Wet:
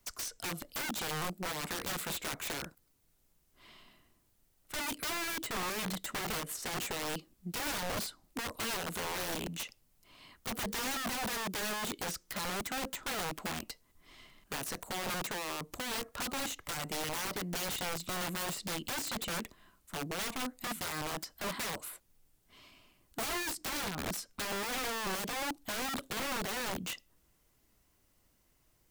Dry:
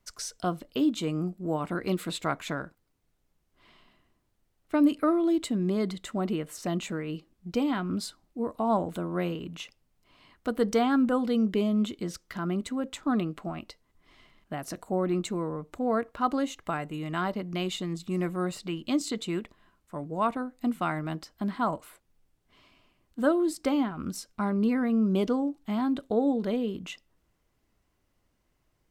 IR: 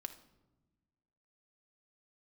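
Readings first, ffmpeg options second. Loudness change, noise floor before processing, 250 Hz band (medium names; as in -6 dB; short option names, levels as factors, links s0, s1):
-7.0 dB, -74 dBFS, -16.0 dB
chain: -filter_complex "[0:a]crystalizer=i=2:c=0,acrossover=split=170|3100[s0][s1][s2];[s0]acompressor=threshold=0.00501:ratio=4[s3];[s1]acompressor=threshold=0.0398:ratio=4[s4];[s2]acompressor=threshold=0.01:ratio=4[s5];[s3][s4][s5]amix=inputs=3:normalize=0,aeval=exprs='(mod(35.5*val(0)+1,2)-1)/35.5':c=same"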